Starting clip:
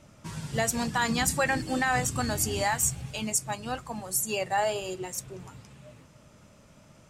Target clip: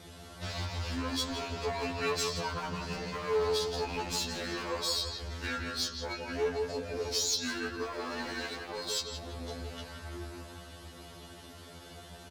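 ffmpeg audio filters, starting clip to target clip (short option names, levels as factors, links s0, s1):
-filter_complex "[0:a]highpass=f=78:w=0.5412,highpass=f=78:w=1.3066,acrusher=bits=10:mix=0:aa=0.000001,acompressor=threshold=0.0112:ratio=2,alimiter=level_in=2.11:limit=0.0631:level=0:latency=1:release=90,volume=0.473,asetrate=25442,aresample=44100,lowshelf=f=150:g=8.5,aecho=1:1:4.5:0.63,asplit=2[s0][s1];[s1]adelay=167,lowpass=f=2300:p=1,volume=0.631,asplit=2[s2][s3];[s3]adelay=167,lowpass=f=2300:p=1,volume=0.46,asplit=2[s4][s5];[s5]adelay=167,lowpass=f=2300:p=1,volume=0.46,asplit=2[s6][s7];[s7]adelay=167,lowpass=f=2300:p=1,volume=0.46,asplit=2[s8][s9];[s9]adelay=167,lowpass=f=2300:p=1,volume=0.46,asplit=2[s10][s11];[s11]adelay=167,lowpass=f=2300:p=1,volume=0.46[s12];[s2][s4][s6][s8][s10][s12]amix=inputs=6:normalize=0[s13];[s0][s13]amix=inputs=2:normalize=0,acontrast=53,asoftclip=type=hard:threshold=0.0398,bass=f=250:g=-10,treble=f=4000:g=2,afftfilt=real='re*2*eq(mod(b,4),0)':imag='im*2*eq(mod(b,4),0)':win_size=2048:overlap=0.75,volume=1.5"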